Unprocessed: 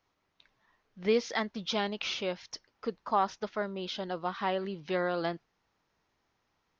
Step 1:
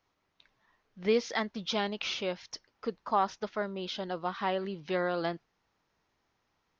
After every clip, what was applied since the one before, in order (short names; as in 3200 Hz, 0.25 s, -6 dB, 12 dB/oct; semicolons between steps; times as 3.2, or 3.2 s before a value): nothing audible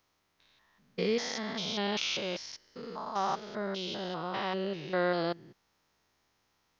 stepped spectrum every 0.2 s; high shelf 4200 Hz +10 dB; gain +2 dB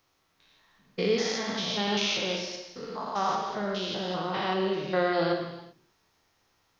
non-linear reverb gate 0.42 s falling, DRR 2 dB; gain +2.5 dB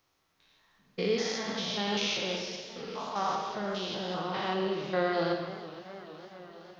warbling echo 0.461 s, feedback 72%, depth 140 cents, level -16 dB; gain -3 dB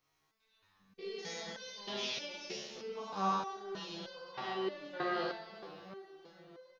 reverse bouncing-ball echo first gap 20 ms, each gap 1.6×, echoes 5; stepped resonator 3.2 Hz 73–510 Hz; gain +2 dB